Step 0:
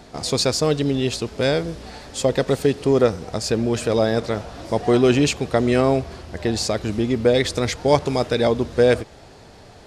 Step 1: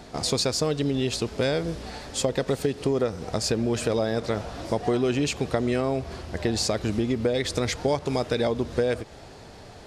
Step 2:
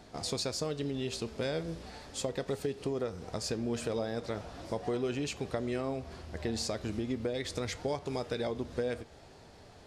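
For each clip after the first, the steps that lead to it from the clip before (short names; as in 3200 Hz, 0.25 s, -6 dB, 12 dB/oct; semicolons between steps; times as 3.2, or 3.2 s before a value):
compressor, threshold -21 dBFS, peak gain reduction 11 dB
flange 0.38 Hz, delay 9.4 ms, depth 3.9 ms, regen +81%; gain -5 dB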